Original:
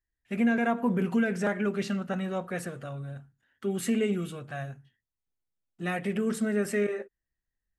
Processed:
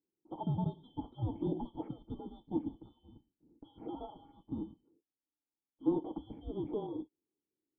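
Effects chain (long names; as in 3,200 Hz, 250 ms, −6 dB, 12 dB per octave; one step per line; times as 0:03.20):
band-splitting scrambler in four parts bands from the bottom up 2413
formant resonators in series u
level +13.5 dB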